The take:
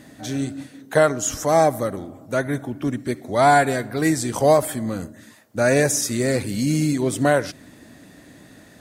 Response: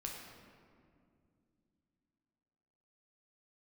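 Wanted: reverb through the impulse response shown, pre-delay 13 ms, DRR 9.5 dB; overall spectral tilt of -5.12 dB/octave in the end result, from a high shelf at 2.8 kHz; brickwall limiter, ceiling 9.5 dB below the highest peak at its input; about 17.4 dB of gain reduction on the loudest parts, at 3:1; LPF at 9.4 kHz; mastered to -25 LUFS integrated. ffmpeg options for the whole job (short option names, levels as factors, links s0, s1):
-filter_complex "[0:a]lowpass=9400,highshelf=f=2800:g=-4,acompressor=threshold=0.0158:ratio=3,alimiter=level_in=1.68:limit=0.0631:level=0:latency=1,volume=0.596,asplit=2[s0][s1];[1:a]atrim=start_sample=2205,adelay=13[s2];[s1][s2]afir=irnorm=-1:irlink=0,volume=0.376[s3];[s0][s3]amix=inputs=2:normalize=0,volume=4.73"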